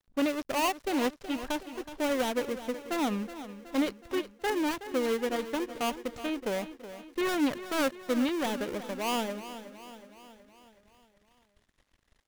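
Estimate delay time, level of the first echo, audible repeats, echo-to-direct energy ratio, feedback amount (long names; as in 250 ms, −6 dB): 371 ms, −13.0 dB, 5, −11.5 dB, 56%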